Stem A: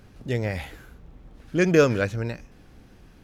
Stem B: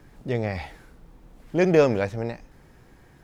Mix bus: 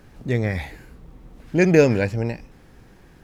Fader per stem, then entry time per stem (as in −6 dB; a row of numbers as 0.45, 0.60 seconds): −1.5, +0.5 decibels; 0.00, 0.00 seconds